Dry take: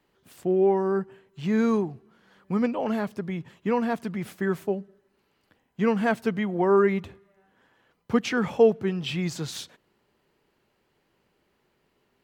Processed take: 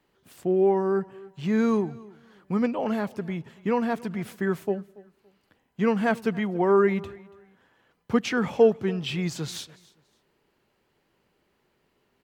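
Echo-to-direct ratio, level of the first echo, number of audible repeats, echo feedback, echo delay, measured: -21.5 dB, -22.0 dB, 2, 25%, 283 ms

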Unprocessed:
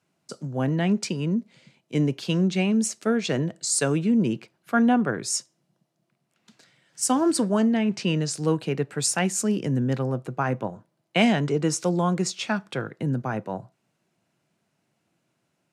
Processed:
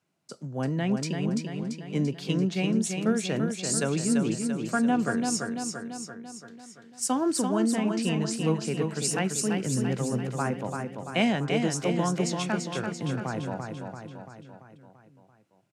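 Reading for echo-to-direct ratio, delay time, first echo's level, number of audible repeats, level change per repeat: -3.5 dB, 339 ms, -5.0 dB, 6, -5.0 dB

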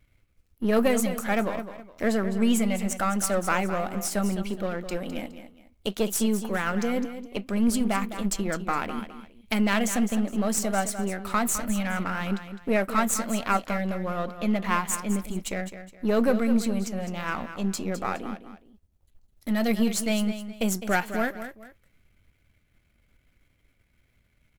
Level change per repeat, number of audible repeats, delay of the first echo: -10.0 dB, 2, 208 ms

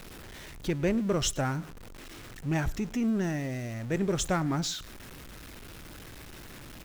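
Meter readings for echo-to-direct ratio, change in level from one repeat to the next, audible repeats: -22.5 dB, -11.5 dB, 2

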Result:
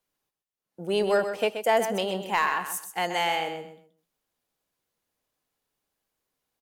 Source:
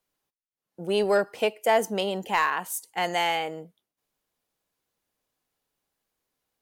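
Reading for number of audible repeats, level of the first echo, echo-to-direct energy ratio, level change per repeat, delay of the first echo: 3, -9.0 dB, -8.5 dB, -12.5 dB, 128 ms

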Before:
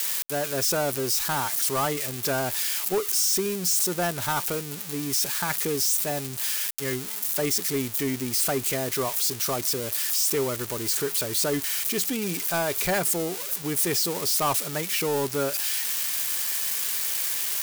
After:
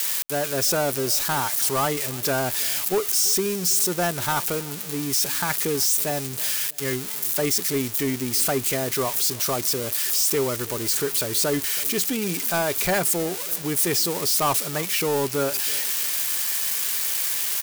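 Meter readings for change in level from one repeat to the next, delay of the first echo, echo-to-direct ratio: -8.5 dB, 326 ms, -20.5 dB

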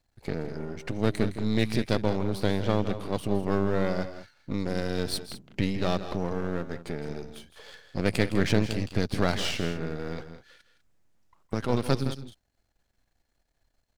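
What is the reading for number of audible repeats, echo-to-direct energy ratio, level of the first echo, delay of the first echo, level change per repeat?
2, -10.5 dB, -12.5 dB, 163 ms, no regular repeats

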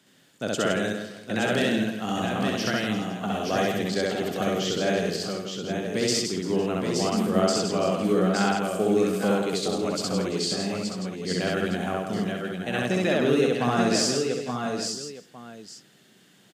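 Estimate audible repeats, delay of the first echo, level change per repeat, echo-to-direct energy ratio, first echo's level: 12, 65 ms, no regular repeats, 3.0 dB, 0.0 dB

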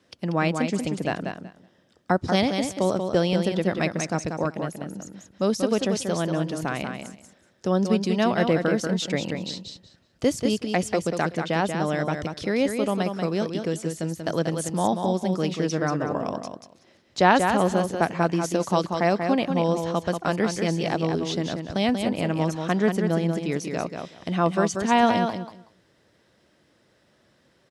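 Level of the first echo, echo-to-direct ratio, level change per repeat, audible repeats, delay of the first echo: -6.0 dB, -6.0 dB, -15.5 dB, 2, 187 ms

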